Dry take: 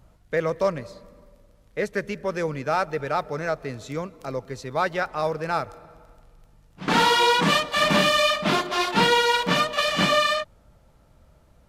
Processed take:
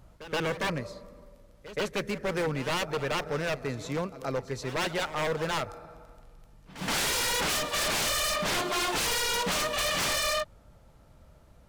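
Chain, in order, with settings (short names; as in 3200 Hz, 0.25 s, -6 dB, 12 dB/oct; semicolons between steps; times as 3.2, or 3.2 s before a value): wavefolder -23.5 dBFS; pre-echo 0.124 s -15 dB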